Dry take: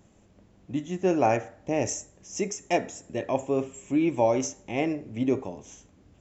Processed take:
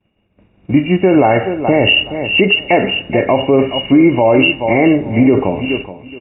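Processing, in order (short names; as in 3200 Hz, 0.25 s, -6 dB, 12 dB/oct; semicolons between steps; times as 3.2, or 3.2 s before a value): nonlinear frequency compression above 2100 Hz 4:1; expander -47 dBFS; AGC gain up to 11.5 dB; feedback echo 0.423 s, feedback 18%, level -15 dB; maximiser +12 dB; gain -1 dB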